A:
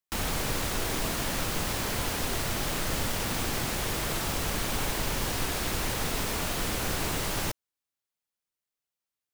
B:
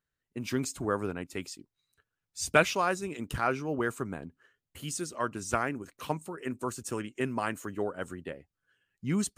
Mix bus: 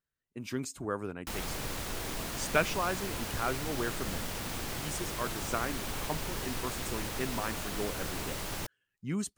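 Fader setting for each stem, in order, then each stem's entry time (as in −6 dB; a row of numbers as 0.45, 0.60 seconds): −7.0, −4.5 decibels; 1.15, 0.00 seconds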